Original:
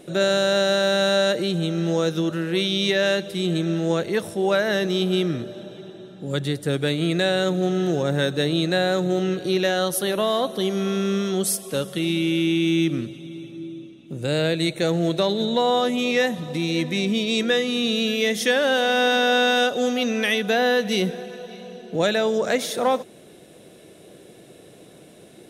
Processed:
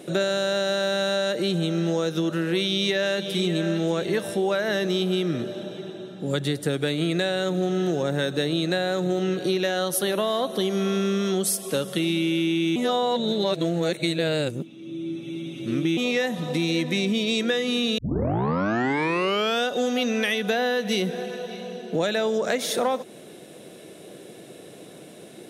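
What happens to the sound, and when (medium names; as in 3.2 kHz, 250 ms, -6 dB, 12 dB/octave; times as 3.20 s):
2.58–3.62 s: echo throw 580 ms, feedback 45%, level -12 dB
12.76–15.97 s: reverse
17.98 s: tape start 1.67 s
whole clip: high-pass 130 Hz; compression, threshold -24 dBFS; trim +3.5 dB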